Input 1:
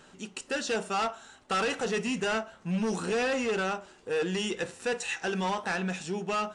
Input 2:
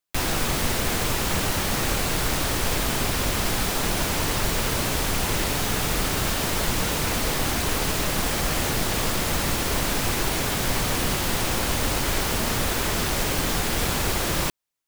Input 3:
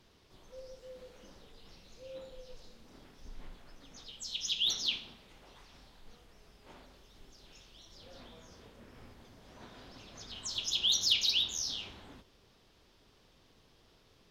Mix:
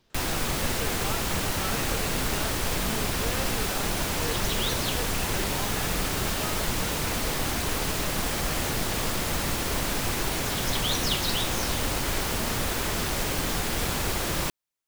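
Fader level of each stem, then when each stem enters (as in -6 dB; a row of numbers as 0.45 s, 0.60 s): -8.5 dB, -3.5 dB, -2.0 dB; 0.10 s, 0.00 s, 0.00 s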